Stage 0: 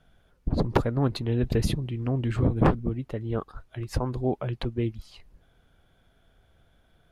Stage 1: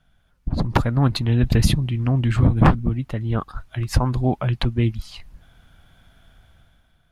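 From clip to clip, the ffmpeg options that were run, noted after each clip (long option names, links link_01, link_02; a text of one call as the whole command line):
ffmpeg -i in.wav -af "equalizer=frequency=430:width_type=o:width=1:gain=-11,dynaudnorm=framelen=120:gausssize=11:maxgain=11dB" out.wav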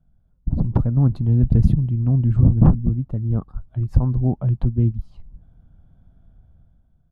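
ffmpeg -i in.wav -af "firequalizer=gain_entry='entry(180,0);entry(320,-6);entry(2000,-29)':delay=0.05:min_phase=1,volume=2.5dB" out.wav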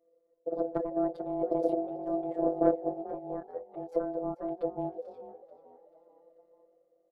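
ffmpeg -i in.wav -filter_complex "[0:a]afftfilt=real='hypot(re,im)*cos(PI*b)':imag='0':win_size=1024:overlap=0.75,aeval=exprs='val(0)*sin(2*PI*500*n/s)':channel_layout=same,asplit=5[link_01][link_02][link_03][link_04][link_05];[link_02]adelay=438,afreqshift=47,volume=-16.5dB[link_06];[link_03]adelay=876,afreqshift=94,volume=-24.2dB[link_07];[link_04]adelay=1314,afreqshift=141,volume=-32dB[link_08];[link_05]adelay=1752,afreqshift=188,volume=-39.7dB[link_09];[link_01][link_06][link_07][link_08][link_09]amix=inputs=5:normalize=0,volume=-6.5dB" out.wav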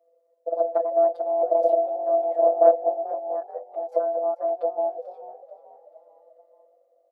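ffmpeg -i in.wav -af "highpass=frequency=640:width_type=q:width=4.9" out.wav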